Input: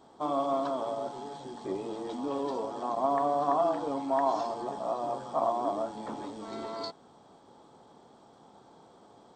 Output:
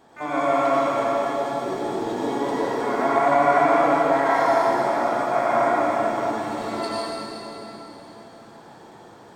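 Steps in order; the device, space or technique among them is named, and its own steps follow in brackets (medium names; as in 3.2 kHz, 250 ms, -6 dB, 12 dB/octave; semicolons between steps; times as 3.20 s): shimmer-style reverb (harmony voices +12 st -9 dB; reverberation RT60 3.6 s, pre-delay 80 ms, DRR -7 dB); trim +2 dB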